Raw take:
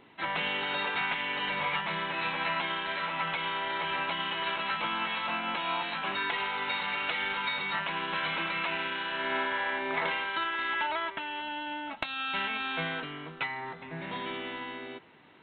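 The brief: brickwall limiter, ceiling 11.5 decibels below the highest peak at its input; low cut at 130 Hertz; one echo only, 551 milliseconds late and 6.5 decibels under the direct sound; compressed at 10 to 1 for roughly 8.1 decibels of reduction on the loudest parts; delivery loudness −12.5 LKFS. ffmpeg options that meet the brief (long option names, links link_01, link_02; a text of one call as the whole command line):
ffmpeg -i in.wav -af "highpass=130,acompressor=threshold=-35dB:ratio=10,alimiter=level_in=8dB:limit=-24dB:level=0:latency=1,volume=-8dB,aecho=1:1:551:0.473,volume=26.5dB" out.wav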